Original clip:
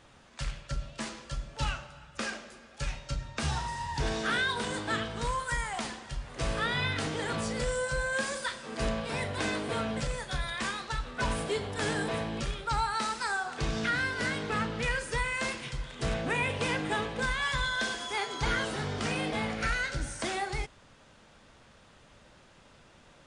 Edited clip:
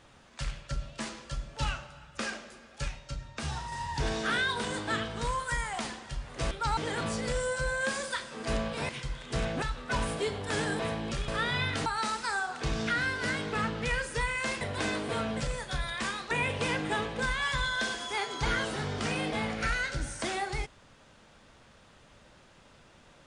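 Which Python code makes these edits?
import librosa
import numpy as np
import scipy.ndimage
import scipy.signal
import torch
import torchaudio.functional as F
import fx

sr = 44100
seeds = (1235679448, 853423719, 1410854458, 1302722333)

y = fx.edit(x, sr, fx.clip_gain(start_s=2.88, length_s=0.84, db=-4.0),
    fx.swap(start_s=6.51, length_s=0.58, other_s=12.57, other_length_s=0.26),
    fx.swap(start_s=9.21, length_s=1.7, other_s=15.58, other_length_s=0.73), tone=tone)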